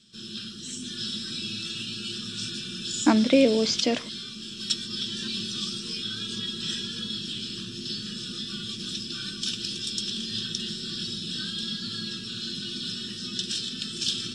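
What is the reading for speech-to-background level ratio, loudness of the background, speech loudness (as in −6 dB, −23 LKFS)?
8.5 dB, −31.0 LKFS, −22.5 LKFS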